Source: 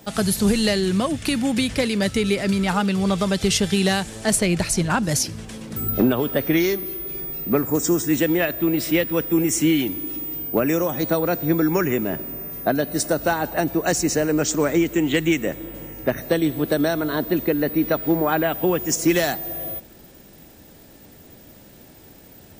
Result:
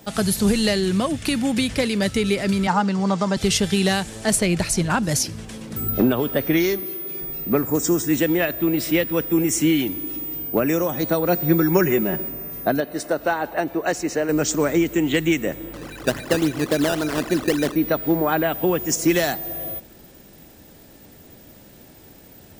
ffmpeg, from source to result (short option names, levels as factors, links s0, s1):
-filter_complex "[0:a]asettb=1/sr,asplit=3[s0][s1][s2];[s0]atrim=end=2.674[s3];[s1]atrim=start=2.67:end=3.37,asetpts=PTS-STARTPTS,afade=t=in:d=0.004:c=qsin,afade=t=out:st=0.696:d=0.004:c=qsin,highpass=f=140:w=0.5412,highpass=f=140:w=1.3066,equalizer=f=420:t=q:w=4:g=-3,equalizer=f=910:t=q:w=4:g=8,equalizer=f=2500:t=q:w=4:g=-7,equalizer=f=3500:t=q:w=4:g=-8,lowpass=f=7400:w=0.5412,lowpass=f=7400:w=1.3066[s4];[s2]atrim=start=3.366[s5];[s3][s4]acrossfade=d=0.004:c1=hsin:c2=qsin[s6];[s6][s5]acrossfade=d=0.004:c1=qsin:c2=hsin,asettb=1/sr,asplit=3[s7][s8][s9];[s7]atrim=end=6.804[s10];[s8]atrim=start=6.8:end=7.21,asetpts=PTS-STARTPTS,afade=t=in:d=0.004:c=qsin,afade=t=out:st=0.406:d=0.004:c=qsin,highpass=150[s11];[s9]atrim=start=7.206[s12];[s10][s11]acrossfade=d=0.004:c1=hsin:c2=qsin[s13];[s13][s12]acrossfade=d=0.004:c1=qsin:c2=hsin,asettb=1/sr,asplit=3[s14][s15][s16];[s14]atrim=end=11.284[s17];[s15]atrim=start=11.28:end=12.29,asetpts=PTS-STARTPTS,afade=t=in:d=0.004:c=qsin,afade=t=out:st=1.006:d=0.004:c=qsin,aecho=1:1:5.4:0.65,atrim=end_sample=44541[s18];[s16]atrim=start=12.286[s19];[s17][s18]acrossfade=d=0.004:c1=hsin:c2=qsin[s20];[s20][s19]acrossfade=d=0.004:c1=qsin:c2=hsin,asettb=1/sr,asplit=3[s21][s22][s23];[s21]atrim=end=12.804[s24];[s22]atrim=start=12.8:end=14.29,asetpts=PTS-STARTPTS,afade=t=in:d=0.004:c=qsin,afade=t=out:st=1.486:d=0.004:c=qsin,bass=f=250:g=-10,treble=f=4000:g=-10[s25];[s23]atrim=start=14.286[s26];[s24][s25]acrossfade=d=0.004:c1=hsin:c2=qsin[s27];[s27][s26]acrossfade=d=0.004:c1=qsin:c2=hsin,asettb=1/sr,asplit=3[s28][s29][s30];[s28]atrim=end=15.734[s31];[s29]atrim=start=15.73:end=17.76,asetpts=PTS-STARTPTS,afade=t=in:d=0.004:c=qsin,afade=t=out:st=2.026:d=0.004:c=qsin,acrusher=samples=14:mix=1:aa=0.000001:lfo=1:lforange=14:lforate=3.6[s32];[s30]atrim=start=17.756[s33];[s31][s32]acrossfade=d=0.004:c1=hsin:c2=qsin[s34];[s34][s33]acrossfade=d=0.004:c1=qsin:c2=hsin"